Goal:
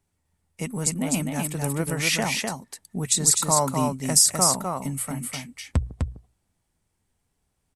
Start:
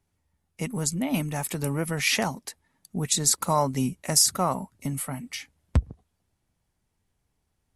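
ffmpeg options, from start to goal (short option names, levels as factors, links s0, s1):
-filter_complex "[0:a]asettb=1/sr,asplit=3[s0][s1][s2];[s0]atrim=end=0.944[s3];[s1]atrim=start=0.94:end=1.55,asetpts=PTS-STARTPTS,afade=t=in:d=0.004:c=qsin,afade=t=out:st=0.606:d=0.004:c=qsin,agate=range=0.0224:threshold=0.0398:ratio=3:detection=peak[s4];[s2]atrim=start=1.546[s5];[s3][s4]acrossfade=d=0.004:c1=hsin:c2=qsin[s6];[s6][s5]acrossfade=d=0.004:c1=qsin:c2=hsin,equalizer=f=8300:t=o:w=0.32:g=6.5,bandreject=f=60:t=h:w=6,bandreject=f=120:t=h:w=6,aecho=1:1:253:0.631"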